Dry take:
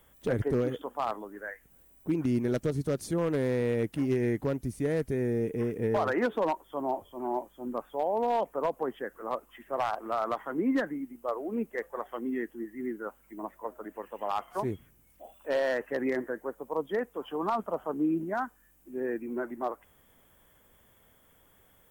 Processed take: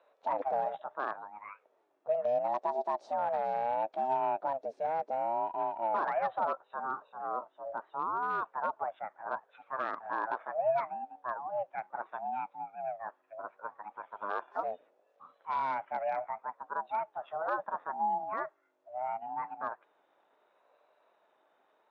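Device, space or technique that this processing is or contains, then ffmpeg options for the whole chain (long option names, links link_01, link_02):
voice changer toy: -af "highshelf=frequency=4500:gain=-10.5,aeval=exprs='val(0)*sin(2*PI*420*n/s+420*0.25/0.72*sin(2*PI*0.72*n/s))':channel_layout=same,highpass=570,equalizer=frequency=630:width_type=q:width=4:gain=7,equalizer=frequency=890:width_type=q:width=4:gain=3,equalizer=frequency=2100:width_type=q:width=4:gain=-6,equalizer=frequency=3000:width_type=q:width=4:gain=-7,equalizer=frequency=4800:width_type=q:width=4:gain=-4,lowpass=frequency=4900:width=0.5412,lowpass=frequency=4900:width=1.3066"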